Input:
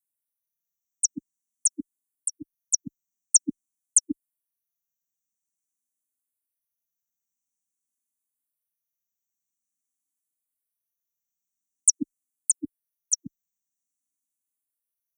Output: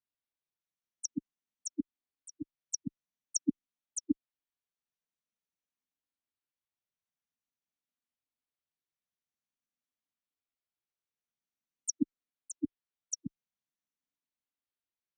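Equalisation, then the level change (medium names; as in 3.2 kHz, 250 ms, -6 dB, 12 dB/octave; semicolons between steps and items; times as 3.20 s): low-pass 4.4 kHz 24 dB/octave; 0.0 dB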